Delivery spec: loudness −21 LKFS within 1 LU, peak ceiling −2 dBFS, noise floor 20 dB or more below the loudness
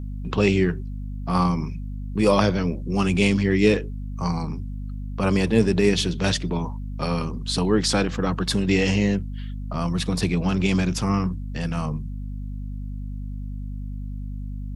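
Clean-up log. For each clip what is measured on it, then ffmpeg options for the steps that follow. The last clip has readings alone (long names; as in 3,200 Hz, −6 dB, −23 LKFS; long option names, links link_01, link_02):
mains hum 50 Hz; hum harmonics up to 250 Hz; level of the hum −28 dBFS; integrated loudness −23.0 LKFS; sample peak −4.5 dBFS; target loudness −21.0 LKFS
→ -af "bandreject=frequency=50:width_type=h:width=4,bandreject=frequency=100:width_type=h:width=4,bandreject=frequency=150:width_type=h:width=4,bandreject=frequency=200:width_type=h:width=4,bandreject=frequency=250:width_type=h:width=4"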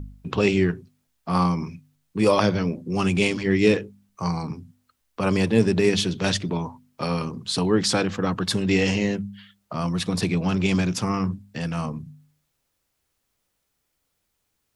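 mains hum none found; integrated loudness −23.5 LKFS; sample peak −5.5 dBFS; target loudness −21.0 LKFS
→ -af "volume=2.5dB"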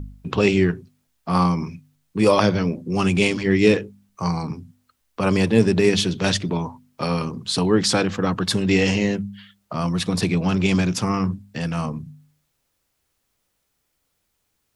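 integrated loudness −21.0 LKFS; sample peak −3.0 dBFS; background noise floor −73 dBFS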